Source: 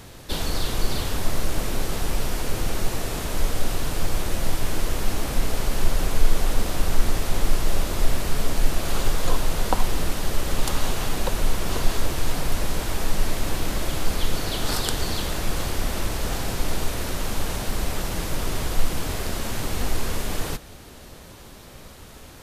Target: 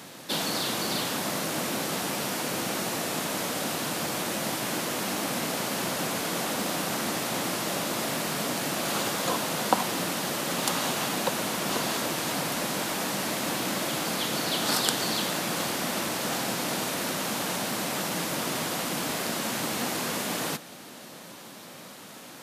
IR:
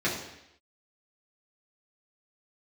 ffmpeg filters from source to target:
-af "highpass=f=170:w=0.5412,highpass=f=170:w=1.3066,equalizer=f=410:t=o:w=0.39:g=-5.5,volume=1.26"

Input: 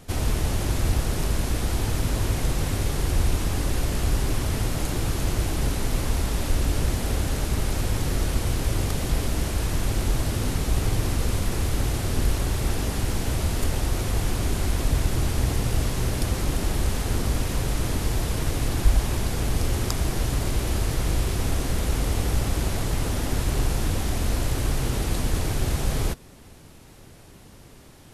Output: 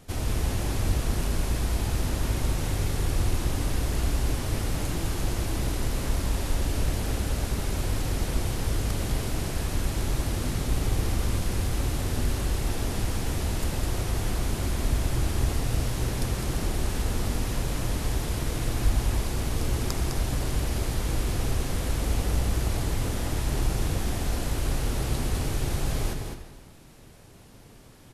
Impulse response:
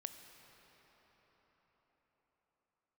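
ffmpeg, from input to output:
-filter_complex "[0:a]aecho=1:1:206:0.501[s0];[1:a]atrim=start_sample=2205,afade=t=out:st=0.43:d=0.01,atrim=end_sample=19404[s1];[s0][s1]afir=irnorm=-1:irlink=0"

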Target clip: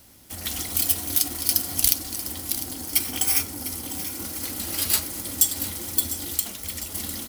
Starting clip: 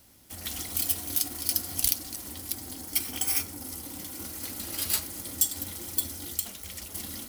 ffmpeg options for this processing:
-af "aecho=1:1:702|1404|2106|2808|3510:0.224|0.119|0.0629|0.0333|0.0177,volume=1.88"

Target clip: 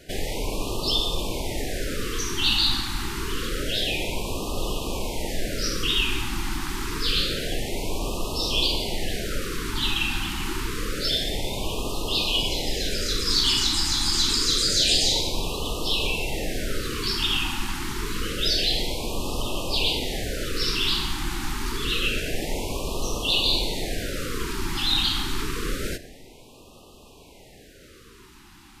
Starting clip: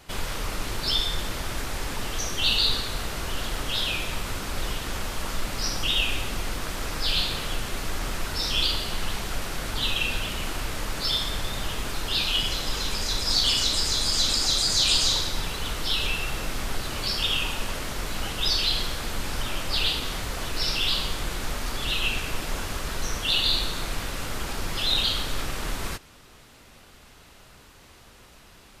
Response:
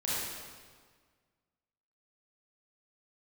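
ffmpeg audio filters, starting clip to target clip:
-filter_complex "[0:a]equalizer=f=390:w=0.92:g=7.5,asplit=2[s0][s1];[1:a]atrim=start_sample=2205[s2];[s1][s2]afir=irnorm=-1:irlink=0,volume=0.0944[s3];[s0][s3]amix=inputs=2:normalize=0,afftfilt=real='re*(1-between(b*sr/1024,520*pow(1800/520,0.5+0.5*sin(2*PI*0.27*pts/sr))/1.41,520*pow(1800/520,0.5+0.5*sin(2*PI*0.27*pts/sr))*1.41))':imag='im*(1-between(b*sr/1024,520*pow(1800/520,0.5+0.5*sin(2*PI*0.27*pts/sr))/1.41,520*pow(1800/520,0.5+0.5*sin(2*PI*0.27*pts/sr))*1.41))':win_size=1024:overlap=0.75"

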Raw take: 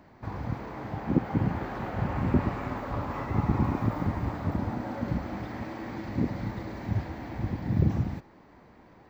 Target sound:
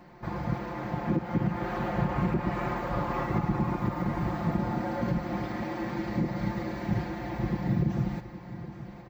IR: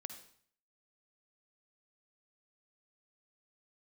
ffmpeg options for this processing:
-filter_complex "[0:a]aecho=1:1:5.7:0.89,alimiter=limit=0.119:level=0:latency=1:release=228,asplit=2[s0][s1];[s1]aecho=0:1:818|1636|2454|3272:0.2|0.0898|0.0404|0.0182[s2];[s0][s2]amix=inputs=2:normalize=0,volume=1.12"

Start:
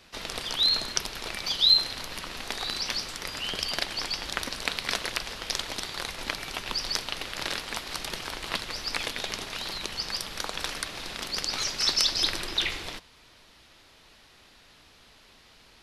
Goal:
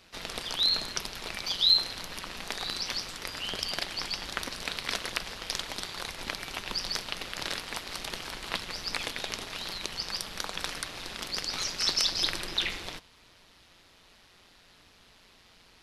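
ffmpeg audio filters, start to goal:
-af "tremolo=f=180:d=0.571"

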